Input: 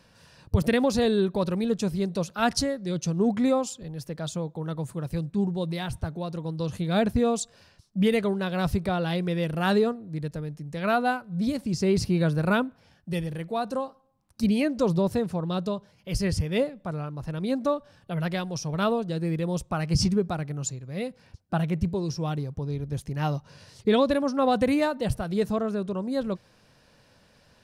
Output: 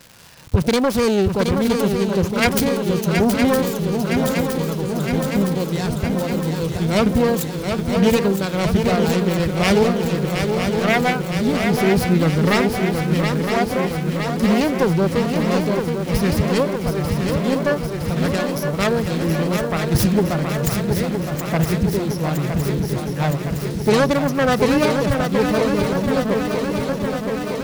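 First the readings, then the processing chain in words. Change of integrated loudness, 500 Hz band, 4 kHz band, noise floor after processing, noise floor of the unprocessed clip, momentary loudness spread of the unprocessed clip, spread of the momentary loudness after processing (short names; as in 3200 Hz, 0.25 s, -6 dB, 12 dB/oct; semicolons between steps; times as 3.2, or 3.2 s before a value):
+8.0 dB, +8.0 dB, +8.5 dB, -26 dBFS, -60 dBFS, 10 LU, 6 LU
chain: self-modulated delay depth 0.43 ms; crackle 380/s -37 dBFS; swung echo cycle 0.964 s, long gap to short 3:1, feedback 71%, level -6 dB; gain +6 dB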